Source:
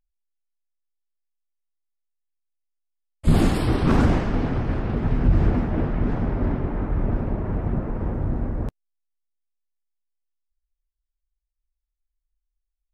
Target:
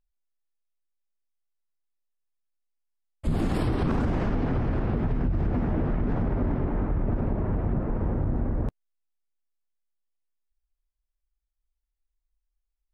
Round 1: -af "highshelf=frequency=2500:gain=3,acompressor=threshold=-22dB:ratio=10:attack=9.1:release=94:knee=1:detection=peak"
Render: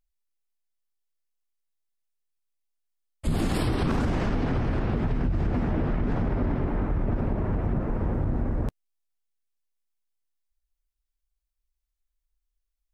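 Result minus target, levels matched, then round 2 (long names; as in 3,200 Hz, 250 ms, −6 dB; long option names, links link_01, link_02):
4,000 Hz band +6.0 dB
-af "highshelf=frequency=2500:gain=-6.5,acompressor=threshold=-22dB:ratio=10:attack=9.1:release=94:knee=1:detection=peak"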